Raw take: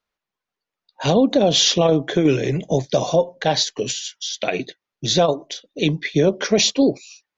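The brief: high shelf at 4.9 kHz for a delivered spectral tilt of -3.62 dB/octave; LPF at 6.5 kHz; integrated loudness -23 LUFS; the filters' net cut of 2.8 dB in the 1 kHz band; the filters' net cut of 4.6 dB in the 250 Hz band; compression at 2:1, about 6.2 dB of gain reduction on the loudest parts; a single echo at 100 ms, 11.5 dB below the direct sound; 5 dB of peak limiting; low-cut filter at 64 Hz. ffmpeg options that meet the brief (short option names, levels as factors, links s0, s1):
-af "highpass=64,lowpass=6500,equalizer=f=250:t=o:g=-6,equalizer=f=1000:t=o:g=-4,highshelf=f=4900:g=4,acompressor=threshold=0.0562:ratio=2,alimiter=limit=0.168:level=0:latency=1,aecho=1:1:100:0.266,volume=1.58"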